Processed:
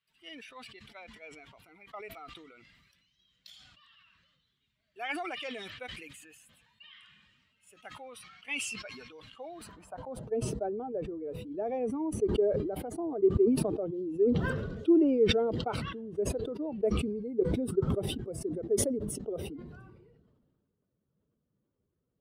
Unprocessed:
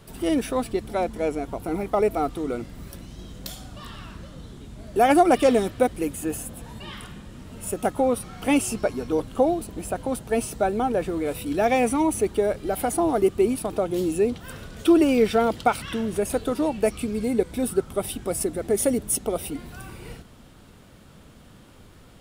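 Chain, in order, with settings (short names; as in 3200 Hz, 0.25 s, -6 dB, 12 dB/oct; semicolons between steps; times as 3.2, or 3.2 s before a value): per-bin expansion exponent 1.5; band-pass sweep 2400 Hz -> 410 Hz, 9.44–10.33; sustainer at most 34 dB/s; gain -3 dB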